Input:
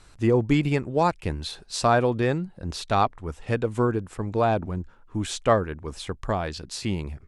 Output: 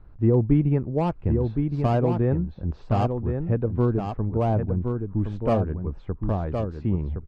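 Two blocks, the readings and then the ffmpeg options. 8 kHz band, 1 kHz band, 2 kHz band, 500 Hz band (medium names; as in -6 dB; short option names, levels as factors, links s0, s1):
under -25 dB, -5.5 dB, -12.0 dB, -1.5 dB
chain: -filter_complex "[0:a]lowpass=1100,lowshelf=f=270:g=11,acrossover=split=690[s0][s1];[s1]asoftclip=type=hard:threshold=0.0668[s2];[s0][s2]amix=inputs=2:normalize=0,aecho=1:1:1066:0.531,volume=0.631" -ar 32000 -c:a libmp3lame -b:a 40k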